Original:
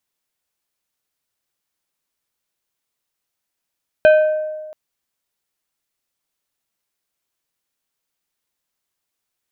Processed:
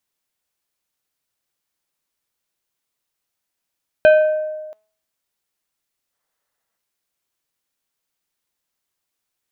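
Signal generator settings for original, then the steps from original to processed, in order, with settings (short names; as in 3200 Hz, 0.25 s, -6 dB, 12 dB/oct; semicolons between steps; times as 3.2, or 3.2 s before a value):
glass hit plate, length 0.68 s, lowest mode 618 Hz, decay 1.45 s, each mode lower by 9 dB, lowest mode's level -5.5 dB
de-hum 213.7 Hz, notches 18; spectral gain 6.12–6.77, 410–2100 Hz +7 dB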